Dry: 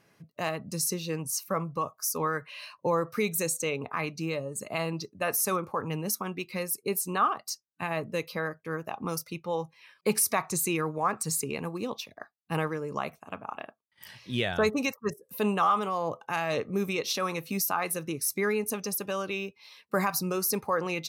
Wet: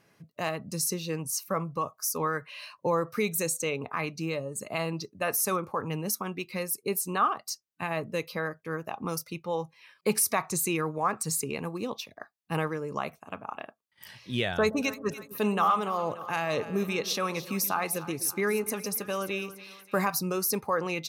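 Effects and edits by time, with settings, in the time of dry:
0:14.53–0:20.09: echo with a time of its own for lows and highs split 790 Hz, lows 124 ms, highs 290 ms, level −14.5 dB

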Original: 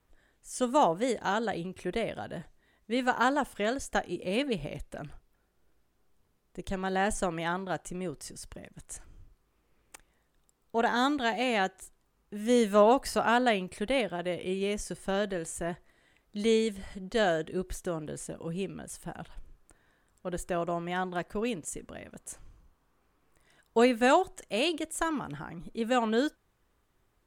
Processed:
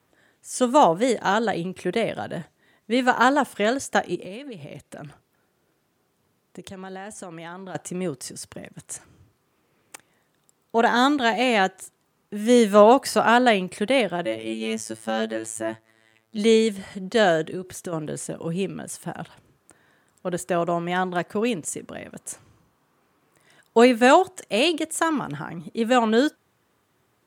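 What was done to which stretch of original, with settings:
0:04.15–0:07.75: downward compressor 10 to 1, threshold −41 dBFS
0:14.25–0:16.38: phases set to zero 111 Hz
0:17.49–0:17.93: downward compressor 10 to 1, threshold −35 dBFS
whole clip: high-pass filter 100 Hz 24 dB per octave; level +8 dB

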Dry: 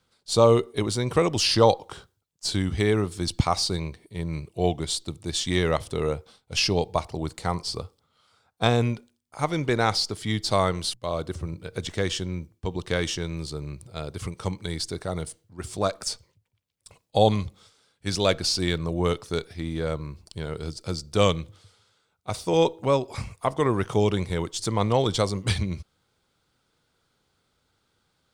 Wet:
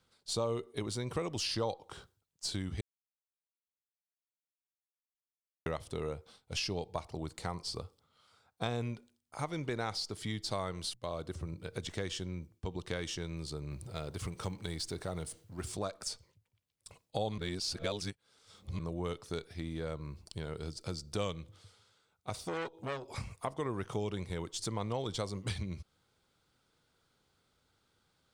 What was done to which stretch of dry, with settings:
0:02.81–0:05.66: silence
0:13.71–0:15.72: mu-law and A-law mismatch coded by mu
0:17.38–0:18.79: reverse
0:22.35–0:23.16: saturating transformer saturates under 1,700 Hz
whole clip: downward compressor 2.5 to 1, threshold −34 dBFS; level −3.5 dB

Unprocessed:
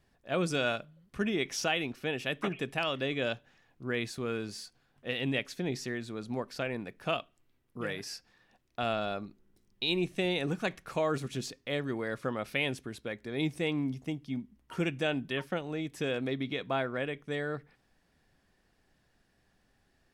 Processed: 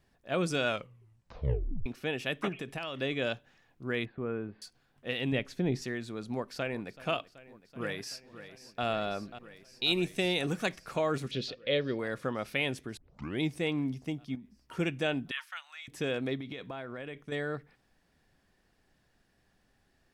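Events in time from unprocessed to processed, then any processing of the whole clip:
0:00.68: tape stop 1.18 s
0:02.49–0:02.98: downward compressor, threshold −33 dBFS
0:04.05–0:04.62: Gaussian smoothing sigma 4.6 samples
0:05.32–0:05.82: spectral tilt −2 dB per octave
0:06.33–0:07.00: delay throw 380 ms, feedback 80%, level −18 dB
0:07.78–0:08.84: delay throw 540 ms, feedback 80%, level −12.5 dB
0:09.84–0:10.76: high-shelf EQ 4,400 Hz +8.5 dB
0:11.31–0:11.99: drawn EQ curve 350 Hz 0 dB, 530 Hz +10 dB, 760 Hz −8 dB, 4,000 Hz +8 dB, 7,900 Hz −17 dB
0:12.97: tape start 0.44 s
0:14.35–0:14.79: downward compressor, threshold −42 dBFS
0:15.31–0:15.88: inverse Chebyshev high-pass filter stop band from 440 Hz, stop band 50 dB
0:16.38–0:17.32: downward compressor 10 to 1, threshold −36 dBFS

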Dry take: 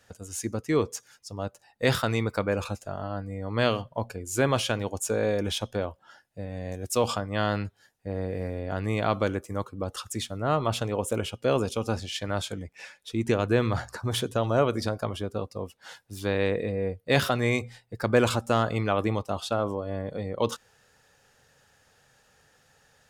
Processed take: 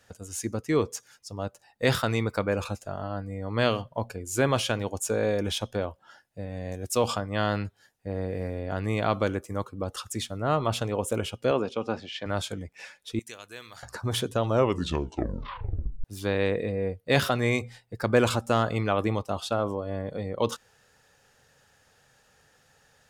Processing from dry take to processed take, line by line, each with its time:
0:11.51–0:12.26: band-pass filter 190–3,200 Hz
0:13.19–0:13.83: first-order pre-emphasis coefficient 0.97
0:14.49: tape stop 1.55 s

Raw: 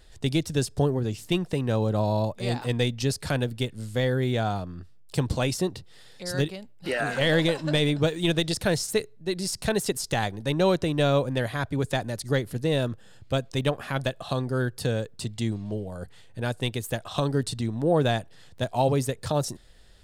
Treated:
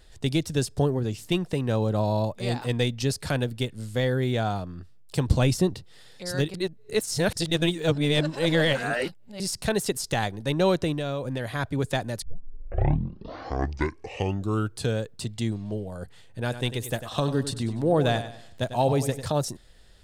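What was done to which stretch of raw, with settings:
0:05.28–0:05.74: low-shelf EQ 220 Hz +9.5 dB
0:06.54–0:09.40: reverse
0:10.93–0:11.53: downward compressor, threshold −26 dBFS
0:12.22: tape start 2.77 s
0:16.40–0:19.26: repeating echo 97 ms, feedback 37%, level −11.5 dB

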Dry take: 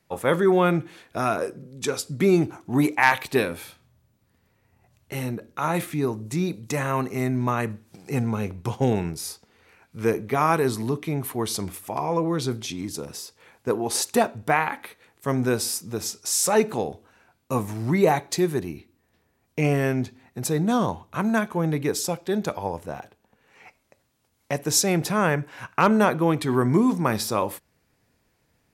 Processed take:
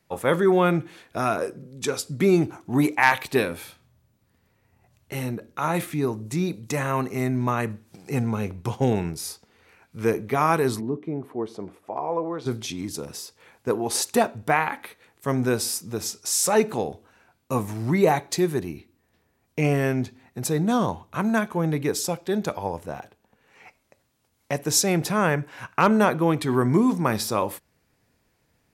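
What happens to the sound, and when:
0:10.79–0:12.45: resonant band-pass 280 Hz → 780 Hz, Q 0.97

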